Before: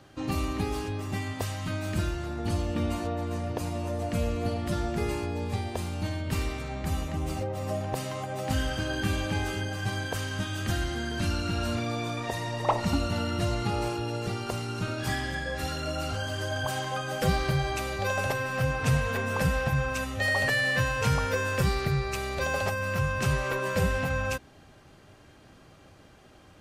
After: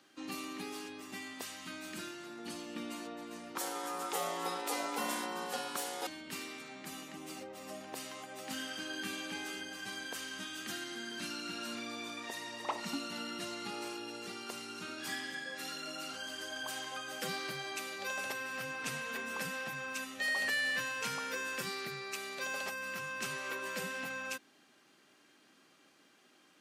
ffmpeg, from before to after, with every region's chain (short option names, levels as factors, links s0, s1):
-filter_complex "[0:a]asettb=1/sr,asplit=3[s0][s1][s2];[s0]atrim=end=3.554[s3];[s1]atrim=start=3.55:end=6.07,asetpts=PTS-STARTPTS,afade=t=in:d=0.004:c=qsin,afade=t=out:st=2.516:d=0.004:c=qsin,highshelf=f=7100:g=10,acontrast=70,aeval=exprs='val(0)*sin(2*PI*640*n/s)':c=same[s4];[s2]atrim=start=6.066[s5];[s3][s4]acrossfade=d=0.004:c1=hsin:c2=qsin[s6];[s6][s5]acrossfade=d=0.004:c1=qsin:c2=hsin,highpass=f=250:w=0.5412,highpass=f=250:w=1.3066,equalizer=f=590:w=0.72:g=-11,volume=0.631"